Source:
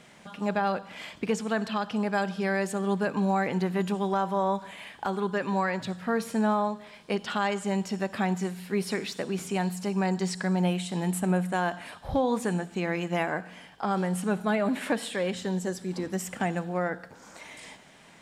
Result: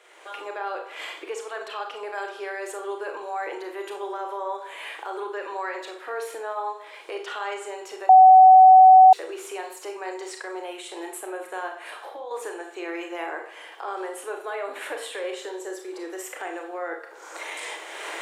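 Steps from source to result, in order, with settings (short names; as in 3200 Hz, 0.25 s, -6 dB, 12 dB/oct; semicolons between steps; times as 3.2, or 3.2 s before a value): recorder AGC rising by 26 dB/s; bell 5000 Hz -5.5 dB 0.48 oct; 11.67–12.31 compressor 6:1, threshold -32 dBFS, peak gain reduction 11 dB; limiter -21 dBFS, peak gain reduction 10.5 dB; rippled Chebyshev high-pass 320 Hz, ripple 3 dB; reverb RT60 0.40 s, pre-delay 28 ms, DRR 3.5 dB; 8.09–9.13 bleep 752 Hz -7 dBFS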